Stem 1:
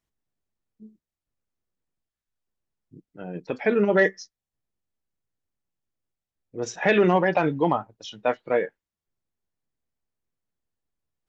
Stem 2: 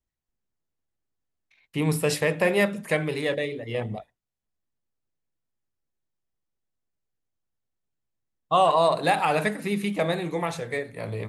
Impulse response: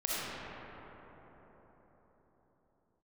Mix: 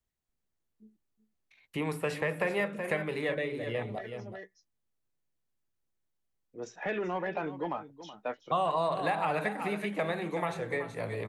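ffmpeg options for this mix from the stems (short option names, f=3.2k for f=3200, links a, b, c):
-filter_complex "[0:a]highpass=140,asoftclip=type=tanh:threshold=-9.5dB,volume=-10dB,asplit=2[a][b];[b]volume=-15.5dB[c];[1:a]bandreject=f=5.2k:w=19,volume=-1dB,asplit=3[d][e][f];[e]volume=-12dB[g];[f]apad=whole_len=497687[h];[a][h]sidechaincompress=threshold=-46dB:ratio=4:attack=16:release=993[i];[c][g]amix=inputs=2:normalize=0,aecho=0:1:374:1[j];[i][d][j]amix=inputs=3:normalize=0,acrossover=split=320|860|2400[k][l][m][n];[k]acompressor=threshold=-40dB:ratio=4[o];[l]acompressor=threshold=-34dB:ratio=4[p];[m]acompressor=threshold=-32dB:ratio=4[q];[n]acompressor=threshold=-52dB:ratio=4[r];[o][p][q][r]amix=inputs=4:normalize=0"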